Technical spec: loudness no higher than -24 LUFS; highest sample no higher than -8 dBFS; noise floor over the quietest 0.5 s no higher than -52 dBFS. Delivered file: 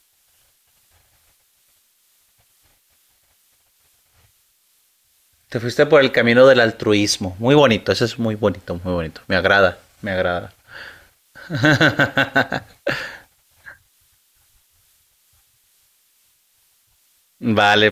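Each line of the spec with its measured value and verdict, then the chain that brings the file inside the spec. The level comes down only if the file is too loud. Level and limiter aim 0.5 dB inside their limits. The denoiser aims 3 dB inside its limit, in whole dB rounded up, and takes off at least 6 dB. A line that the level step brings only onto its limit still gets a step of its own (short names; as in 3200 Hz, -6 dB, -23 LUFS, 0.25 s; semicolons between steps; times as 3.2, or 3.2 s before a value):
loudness -17.0 LUFS: fail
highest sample -2.0 dBFS: fail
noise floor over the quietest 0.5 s -61 dBFS: OK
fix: gain -7.5 dB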